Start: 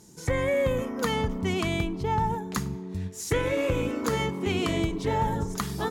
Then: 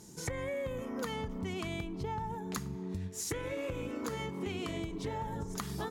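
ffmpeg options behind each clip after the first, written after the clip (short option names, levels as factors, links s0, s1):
-af "acompressor=threshold=0.02:ratio=12"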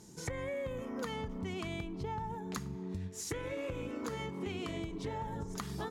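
-af "highshelf=f=11000:g=-8.5,volume=0.841"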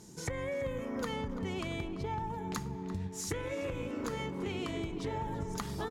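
-filter_complex "[0:a]asplit=2[s0][s1];[s1]adelay=339,lowpass=f=2100:p=1,volume=0.316,asplit=2[s2][s3];[s3]adelay=339,lowpass=f=2100:p=1,volume=0.53,asplit=2[s4][s5];[s5]adelay=339,lowpass=f=2100:p=1,volume=0.53,asplit=2[s6][s7];[s7]adelay=339,lowpass=f=2100:p=1,volume=0.53,asplit=2[s8][s9];[s9]adelay=339,lowpass=f=2100:p=1,volume=0.53,asplit=2[s10][s11];[s11]adelay=339,lowpass=f=2100:p=1,volume=0.53[s12];[s0][s2][s4][s6][s8][s10][s12]amix=inputs=7:normalize=0,volume=1.26"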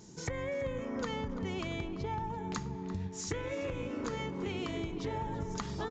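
-af "aresample=16000,aresample=44100"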